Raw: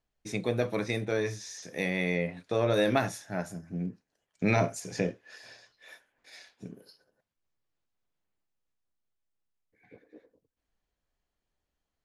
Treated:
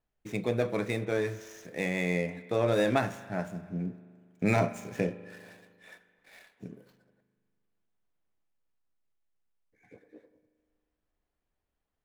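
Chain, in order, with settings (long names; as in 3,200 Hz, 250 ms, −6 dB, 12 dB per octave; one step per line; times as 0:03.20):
running median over 9 samples
spring reverb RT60 1.9 s, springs 39 ms, chirp 55 ms, DRR 14 dB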